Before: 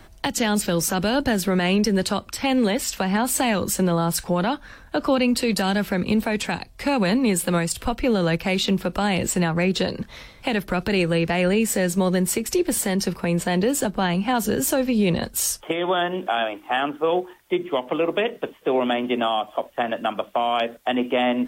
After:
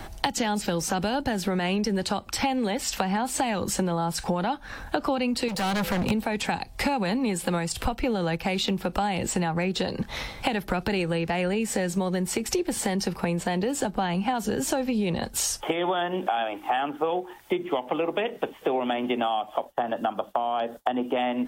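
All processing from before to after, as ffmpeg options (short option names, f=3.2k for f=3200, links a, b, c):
-filter_complex "[0:a]asettb=1/sr,asplit=3[a][b][c];[a]atrim=end=5.484[d];[b]atrim=start=5.48:end=6.11,asetpts=PTS-STARTPTS,afade=t=in:d=0.004:c=qsin,afade=t=out:st=0.626:d=0.004:c=qsin,aeval=exprs='val(0)+0.00891*sin(2*PI*510*n/s)':c=same,asoftclip=type=hard:threshold=-27dB[e];[c]atrim=start=6.106[f];[d][e]acrossfade=d=0.004:c1=hsin:c2=qsin[g];[g][f]acrossfade=d=0.004:c1=qsin:c2=hsin,asettb=1/sr,asplit=3[h][i][j];[h]atrim=end=19.654[k];[i]atrim=start=19.65:end=21.16,asetpts=PTS-STARTPTS,afade=t=in:d=0.004:c=qsin,afade=t=out:st=1.506:d=0.004:c=qsin,acrossover=split=3400[l][m];[m]acompressor=threshold=-43dB:ratio=4:attack=1:release=60[n];[l][n]amix=inputs=2:normalize=0,agate=range=-33dB:threshold=-47dB:ratio=3:release=100:detection=peak,equalizer=f=2.3k:w=2.2:g=-9.5[o];[j]atrim=start=21.156[p];[k][o]acrossfade=d=0.004:c1=hsin:c2=qsin[q];[q][p]acrossfade=d=0.004:c1=qsin:c2=hsin,acrossover=split=7900[r][s];[s]acompressor=threshold=-38dB:ratio=4:attack=1:release=60[t];[r][t]amix=inputs=2:normalize=0,equalizer=f=810:w=6.3:g=8.5,acompressor=threshold=-31dB:ratio=8,volume=7.5dB"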